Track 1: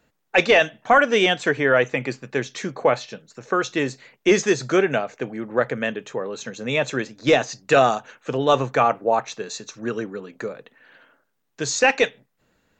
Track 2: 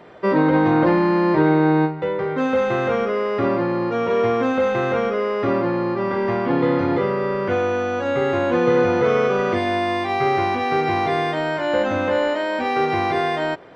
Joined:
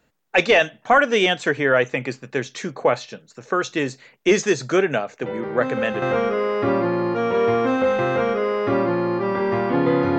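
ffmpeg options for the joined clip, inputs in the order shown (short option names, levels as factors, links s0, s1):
-filter_complex "[1:a]asplit=2[s0][s1];[0:a]apad=whole_dur=10.18,atrim=end=10.18,atrim=end=6.022[s2];[s1]atrim=start=2.778:end=6.94[s3];[s0]atrim=start=1.98:end=2.78,asetpts=PTS-STARTPTS,volume=0.473,afade=t=in:d=0.004:c=hsin,afade=t=out:st=0.796:d=0.004:c=hsin,adelay=5220[s4];[s2][s3]acrossfade=d=0.004:c1=hsin:c2=hsin[s5];[s5][s4]amix=inputs=2:normalize=0"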